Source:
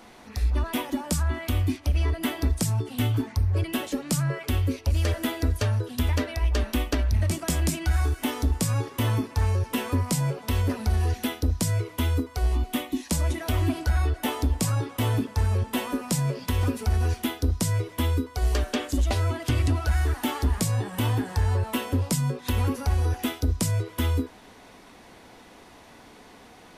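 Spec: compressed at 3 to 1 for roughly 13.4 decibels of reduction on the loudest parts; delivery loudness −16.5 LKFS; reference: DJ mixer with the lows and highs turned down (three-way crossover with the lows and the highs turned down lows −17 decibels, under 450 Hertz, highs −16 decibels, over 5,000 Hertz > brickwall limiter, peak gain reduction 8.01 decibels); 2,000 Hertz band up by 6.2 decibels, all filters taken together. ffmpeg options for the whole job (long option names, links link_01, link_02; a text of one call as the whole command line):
ffmpeg -i in.wav -filter_complex "[0:a]equalizer=frequency=2000:width_type=o:gain=8,acompressor=threshold=-38dB:ratio=3,acrossover=split=450 5000:gain=0.141 1 0.158[link_01][link_02][link_03];[link_01][link_02][link_03]amix=inputs=3:normalize=0,volume=29dB,alimiter=limit=-5dB:level=0:latency=1" out.wav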